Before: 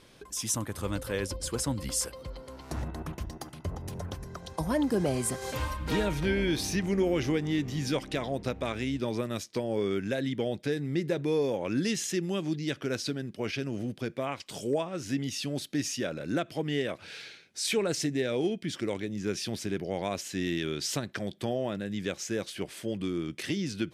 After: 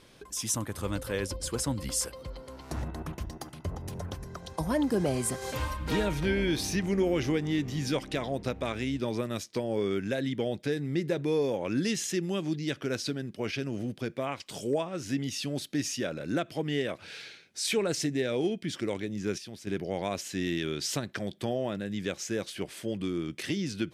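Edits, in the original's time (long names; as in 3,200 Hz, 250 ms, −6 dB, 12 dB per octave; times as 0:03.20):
0:19.38–0:19.67: clip gain −9.5 dB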